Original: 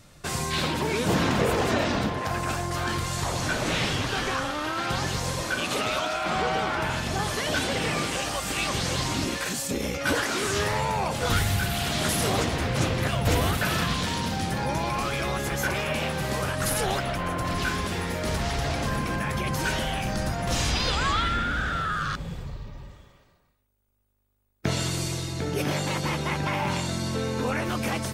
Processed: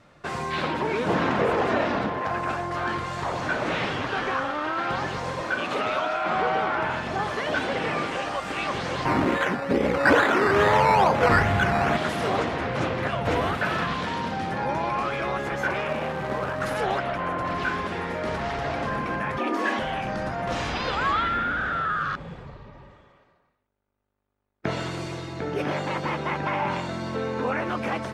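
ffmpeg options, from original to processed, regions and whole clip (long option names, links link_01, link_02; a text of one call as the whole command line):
ffmpeg -i in.wav -filter_complex "[0:a]asettb=1/sr,asplit=3[link_01][link_02][link_03];[link_01]atrim=end=9.054[link_04];[link_02]atrim=start=9.05:end=11.97,asetpts=PTS-STARTPTS,afade=type=in:duration=0.004:curve=qsin,afade=type=out:start_time=2.916:duration=0.004:curve=qsin,lowpass=frequency=2600:width=0.5412,lowpass=frequency=2600:width=1.3066,acrusher=samples=11:mix=1:aa=0.000001:lfo=1:lforange=6.6:lforate=2.3,acontrast=84[link_05];[link_03]atrim=start=11.966[link_06];[link_04][link_05]acrossfade=duration=0.004:curve1=hsin:curve2=qsin[link_07];[link_07][link_06]acrossfade=duration=0.004:curve1=qsin:curve2=hsin,asettb=1/sr,asplit=3[link_08][link_09][link_10];[link_08]atrim=end=15.884[link_11];[link_09]atrim=start=15.88:end=16.61,asetpts=PTS-STARTPTS,afade=type=in:duration=0.004:curve=qsin,afade=type=out:start_time=0.726:duration=0.004:curve=qsin,highshelf=frequency=2700:gain=-10.5,acrusher=bits=2:mode=log:mix=0:aa=0.000001[link_12];[link_10]atrim=start=16.606[link_13];[link_11][link_12]acrossfade=duration=0.004:curve1=hsin:curve2=qsin[link_14];[link_14][link_13]acrossfade=duration=0.004:curve1=qsin:curve2=hsin,asettb=1/sr,asplit=3[link_15][link_16][link_17];[link_15]atrim=end=19.384[link_18];[link_16]atrim=start=19.38:end=19.79,asetpts=PTS-STARTPTS,afade=type=in:duration=0.004:curve=qsin,afade=type=out:start_time=0.406:duration=0.004:curve=qsin,asplit=2[link_19][link_20];[link_20]adelay=28,volume=-10.5dB[link_21];[link_19][link_21]amix=inputs=2:normalize=0,atrim=end_sample=18081,afreqshift=170[link_22];[link_17]atrim=start=19.786[link_23];[link_18][link_22]acrossfade=duration=0.004:curve1=hsin:curve2=qsin[link_24];[link_24][link_23]acrossfade=duration=0.004:curve1=qsin:curve2=hsin,lowpass=1700,aemphasis=mode=production:type=bsi,volume=3.5dB" out.wav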